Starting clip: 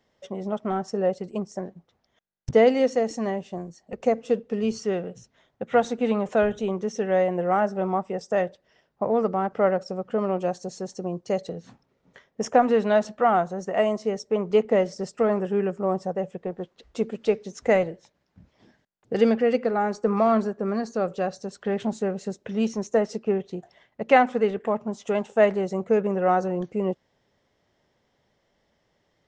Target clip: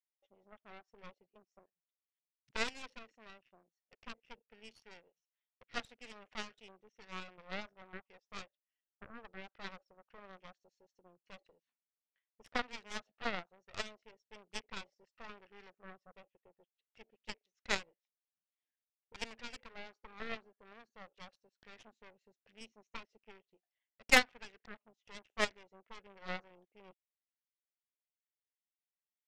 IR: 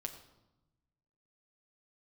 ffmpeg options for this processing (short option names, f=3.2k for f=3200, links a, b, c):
-af "bandpass=f=2.6k:t=q:w=1.9:csg=0,afwtdn=0.00316,aeval=exprs='0.188*(cos(1*acos(clip(val(0)/0.188,-1,1)))-cos(1*PI/2))+0.00841*(cos(3*acos(clip(val(0)/0.188,-1,1)))-cos(3*PI/2))+0.0422*(cos(4*acos(clip(val(0)/0.188,-1,1)))-cos(4*PI/2))+0.0266*(cos(7*acos(clip(val(0)/0.188,-1,1)))-cos(7*PI/2))':c=same,volume=4.5dB"